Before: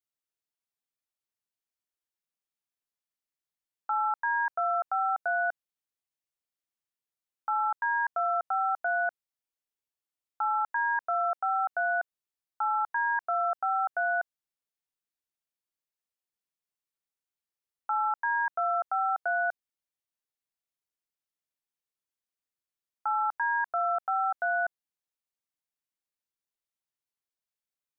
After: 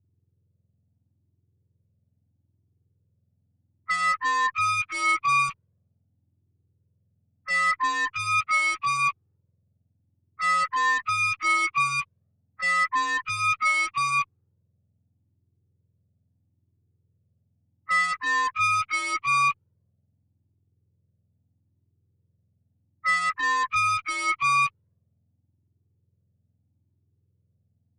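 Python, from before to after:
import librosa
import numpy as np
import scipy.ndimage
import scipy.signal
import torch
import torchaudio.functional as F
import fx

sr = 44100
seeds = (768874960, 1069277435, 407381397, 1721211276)

y = fx.octave_mirror(x, sr, pivot_hz=1300.0)
y = fx.env_lowpass(y, sr, base_hz=540.0, full_db=-30.0)
y = fx.cheby_harmonics(y, sr, harmonics=(2, 4, 5), levels_db=(-18, -25, -17), full_scale_db=-21.0)
y = fx.comb_cascade(y, sr, direction='rising', hz=0.78)
y = y * librosa.db_to_amplitude(8.5)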